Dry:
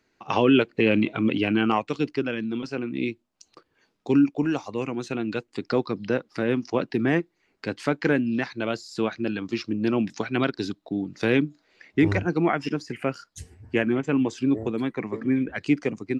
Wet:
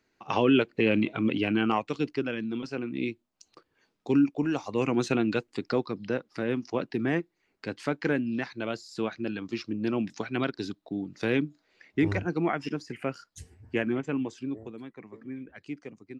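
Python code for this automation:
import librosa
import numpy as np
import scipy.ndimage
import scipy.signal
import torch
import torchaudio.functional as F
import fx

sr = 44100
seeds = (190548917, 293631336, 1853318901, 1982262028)

y = fx.gain(x, sr, db=fx.line((4.5, -3.5), (5.0, 5.0), (5.89, -5.0), (13.98, -5.0), (14.86, -16.0)))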